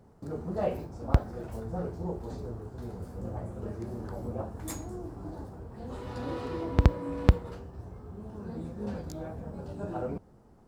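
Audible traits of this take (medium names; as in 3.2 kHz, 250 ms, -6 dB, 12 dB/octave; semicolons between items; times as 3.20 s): noise floor -57 dBFS; spectral tilt -7.5 dB/octave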